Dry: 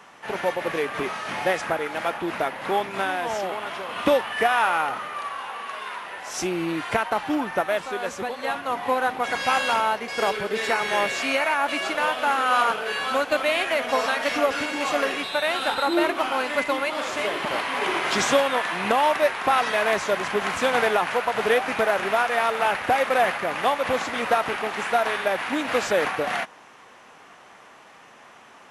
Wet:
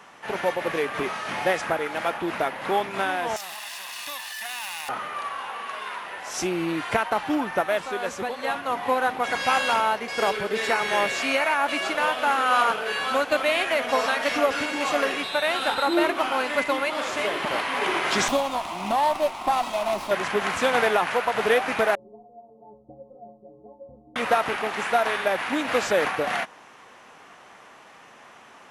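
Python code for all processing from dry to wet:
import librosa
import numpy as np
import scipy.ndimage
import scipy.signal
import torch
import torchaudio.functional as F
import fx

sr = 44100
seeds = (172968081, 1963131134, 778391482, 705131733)

y = fx.chain(x, sr, fx.lower_of_two(delay_ms=1.1),
    fx.differentiator(),
    fx.env_flatten(amount_pct=70), at=(3.36, 4.89))
y = fx.chain(y, sr, fx.fixed_phaser(hz=450.0, stages=6),
    fx.running_max(window=5), at=(18.28, 20.11))
y = fx.chain(y, sr, fx.gaussian_blur(sigma=18.0),
    fx.stiff_resonator(f0_hz=64.0, decay_s=0.8, stiffness=0.03), at=(21.95, 24.16))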